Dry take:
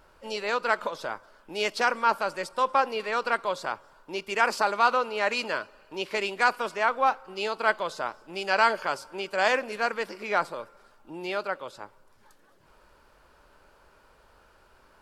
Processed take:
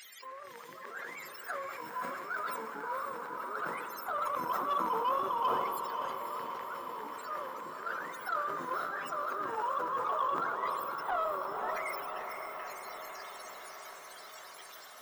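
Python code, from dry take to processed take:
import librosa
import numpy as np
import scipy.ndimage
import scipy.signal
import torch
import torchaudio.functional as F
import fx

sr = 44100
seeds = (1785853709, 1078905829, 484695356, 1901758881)

p1 = fx.octave_mirror(x, sr, pivot_hz=480.0)
p2 = fx.transient(p1, sr, attack_db=7, sustain_db=11)
p3 = fx.low_shelf(p2, sr, hz=360.0, db=-6.0)
p4 = fx.over_compress(p3, sr, threshold_db=-42.0, ratio=-1.0)
p5 = p3 + (p4 * 10.0 ** (0.0 / 20.0))
p6 = fx.dmg_noise_colour(p5, sr, seeds[0], colour='brown', level_db=-50.0)
p7 = fx.filter_lfo_highpass(p6, sr, shape='saw_down', hz=0.17, low_hz=960.0, high_hz=2000.0, q=3.3)
p8 = 10.0 ** (-25.0 / 20.0) * np.tanh(p7 / 10.0 ** (-25.0 / 20.0))
p9 = p8 + fx.echo_diffused(p8, sr, ms=529, feedback_pct=71, wet_db=-6, dry=0)
y = fx.sustainer(p9, sr, db_per_s=29.0)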